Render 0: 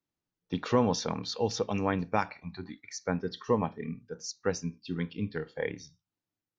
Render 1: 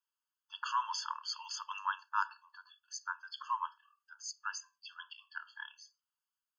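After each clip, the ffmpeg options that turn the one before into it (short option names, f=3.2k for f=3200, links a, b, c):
-af "afftfilt=real='re*eq(mod(floor(b*sr/1024/870),2),1)':imag='im*eq(mod(floor(b*sr/1024/870),2),1)':win_size=1024:overlap=0.75,volume=1dB"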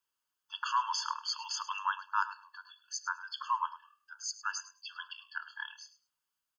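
-filter_complex "[0:a]asplit=2[a][b];[b]alimiter=level_in=5dB:limit=-24dB:level=0:latency=1:release=328,volume=-5dB,volume=-2dB[c];[a][c]amix=inputs=2:normalize=0,aecho=1:1:104|208:0.168|0.0285"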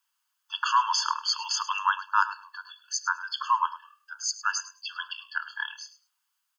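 -af "highpass=f=830:w=0.5412,highpass=f=830:w=1.3066,acontrast=26,volume=3.5dB"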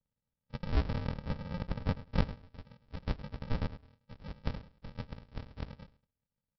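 -af "aresample=11025,acrusher=samples=31:mix=1:aa=0.000001,aresample=44100,adynamicequalizer=threshold=0.00355:dfrequency=2100:dqfactor=0.7:tfrequency=2100:tqfactor=0.7:attack=5:release=100:ratio=0.375:range=2.5:mode=cutabove:tftype=highshelf,volume=-6.5dB"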